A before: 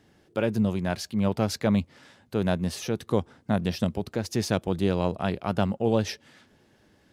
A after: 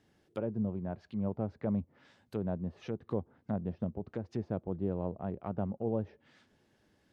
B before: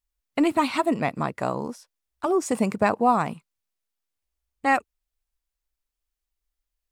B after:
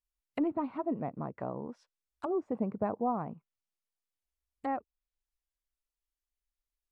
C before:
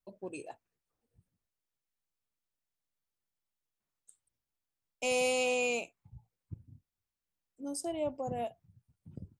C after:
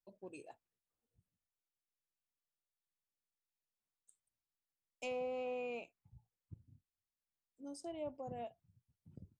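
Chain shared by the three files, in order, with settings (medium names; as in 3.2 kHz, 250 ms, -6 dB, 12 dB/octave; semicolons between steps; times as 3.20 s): low-pass that closes with the level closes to 780 Hz, closed at -24.5 dBFS; trim -9 dB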